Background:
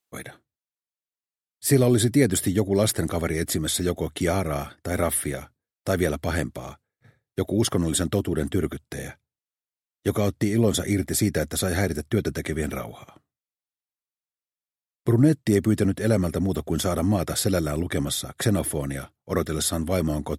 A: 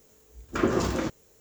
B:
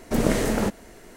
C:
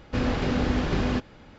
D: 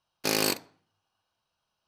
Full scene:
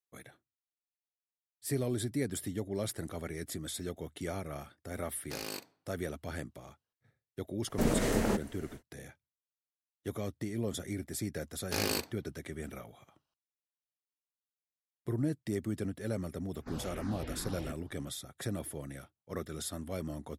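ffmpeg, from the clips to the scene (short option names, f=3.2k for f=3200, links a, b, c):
-filter_complex "[4:a]asplit=2[a][b];[0:a]volume=-14.5dB[c];[2:a]alimiter=level_in=11dB:limit=-1dB:release=50:level=0:latency=1[d];[3:a]asplit=2[e][f];[f]afreqshift=-2.6[g];[e][g]amix=inputs=2:normalize=1[h];[a]atrim=end=1.87,asetpts=PTS-STARTPTS,volume=-14.5dB,afade=t=in:d=0.004:c=hsin,afade=t=out:st=1.866:d=0.004:c=hsin,adelay=5060[i];[d]atrim=end=1.16,asetpts=PTS-STARTPTS,volume=-17dB,afade=t=in:d=0.1,afade=t=out:st=1.06:d=0.1,adelay=7670[j];[b]atrim=end=1.87,asetpts=PTS-STARTPTS,volume=-7dB,afade=t=in:d=0.004:c=hsin,afade=t=out:st=1.866:d=0.004:c=hsin,adelay=11470[k];[h]atrim=end=1.58,asetpts=PTS-STARTPTS,volume=-14dB,afade=t=in:d=0.004:c=hsin,afade=t=out:st=1.576:d=0.004:c=hsin,adelay=16530[l];[c][i][j][k][l]amix=inputs=5:normalize=0"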